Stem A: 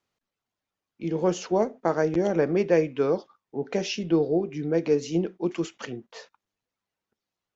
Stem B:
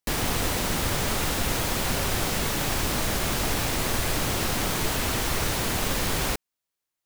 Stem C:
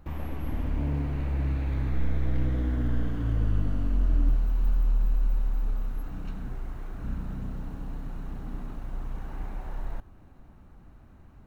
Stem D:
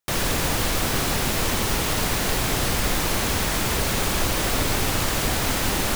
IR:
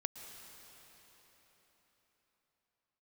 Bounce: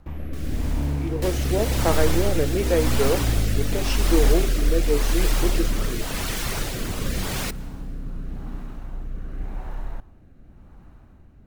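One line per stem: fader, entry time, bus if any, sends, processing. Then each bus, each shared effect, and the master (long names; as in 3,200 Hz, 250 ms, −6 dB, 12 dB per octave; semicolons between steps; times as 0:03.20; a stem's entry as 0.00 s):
+2.0 dB, 0.00 s, no send, high-pass filter 250 Hz
0.0 dB, 1.15 s, send −13.5 dB, reverb reduction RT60 0.59 s
+3.0 dB, 0.00 s, send −13.5 dB, no processing
−15.5 dB, 0.25 s, no send, automatic ducking −7 dB, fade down 0.35 s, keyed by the first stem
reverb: on, RT60 4.5 s, pre-delay 106 ms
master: rotating-speaker cabinet horn 0.9 Hz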